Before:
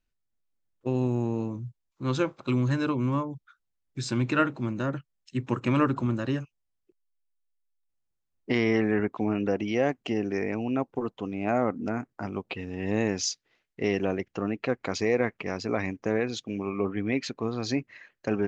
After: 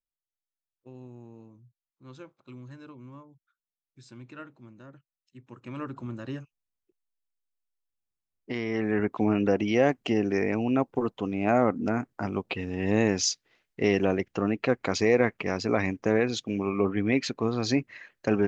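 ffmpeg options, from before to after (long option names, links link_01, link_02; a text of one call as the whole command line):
ffmpeg -i in.wav -af "volume=3dB,afade=type=in:start_time=5.51:duration=0.84:silence=0.237137,afade=type=in:start_time=8.69:duration=0.54:silence=0.316228" out.wav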